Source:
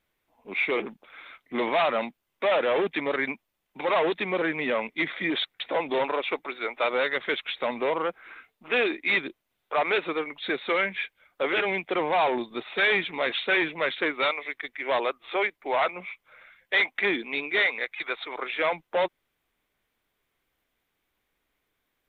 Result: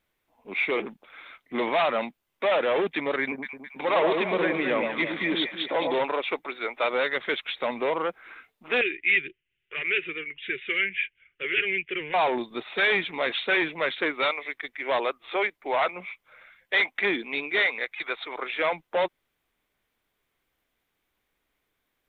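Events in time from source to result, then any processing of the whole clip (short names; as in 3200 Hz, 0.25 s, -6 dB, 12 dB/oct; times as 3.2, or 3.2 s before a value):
3.21–5.94 echo with dull and thin repeats by turns 0.107 s, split 1000 Hz, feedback 65%, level -2.5 dB
8.81–12.14 EQ curve 140 Hz 0 dB, 270 Hz -15 dB, 380 Hz -2 dB, 700 Hz -29 dB, 1100 Hz -20 dB, 1700 Hz -1 dB, 2900 Hz +7 dB, 4400 Hz -26 dB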